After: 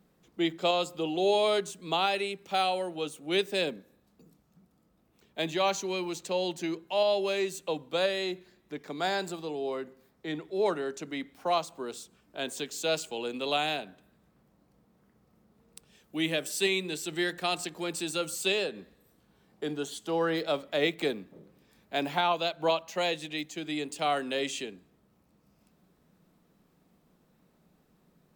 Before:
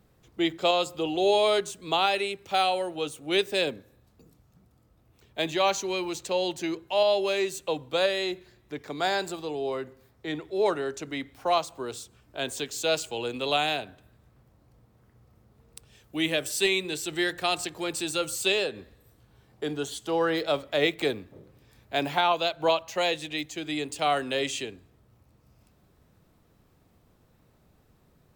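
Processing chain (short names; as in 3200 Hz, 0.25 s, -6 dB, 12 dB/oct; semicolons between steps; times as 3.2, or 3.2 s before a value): resonant low shelf 140 Hz -6.5 dB, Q 3; gain -3.5 dB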